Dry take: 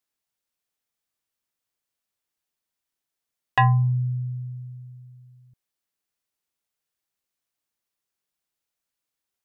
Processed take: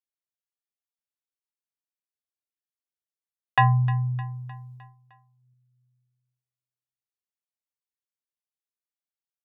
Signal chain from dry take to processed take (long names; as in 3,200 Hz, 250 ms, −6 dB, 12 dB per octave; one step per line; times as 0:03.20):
high-pass filter 80 Hz 6 dB per octave
noise gate −42 dBFS, range −17 dB
repeating echo 306 ms, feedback 53%, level −16.5 dB